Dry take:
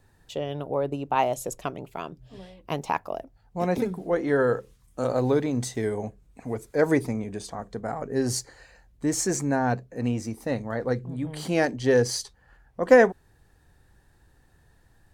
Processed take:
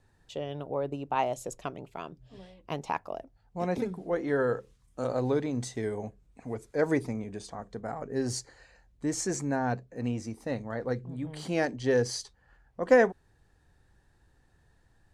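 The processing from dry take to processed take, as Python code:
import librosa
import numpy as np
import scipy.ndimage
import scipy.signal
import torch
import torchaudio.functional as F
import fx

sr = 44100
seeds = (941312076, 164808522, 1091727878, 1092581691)

y = scipy.signal.sosfilt(scipy.signal.butter(2, 9100.0, 'lowpass', fs=sr, output='sos'), x)
y = y * 10.0 ** (-5.0 / 20.0)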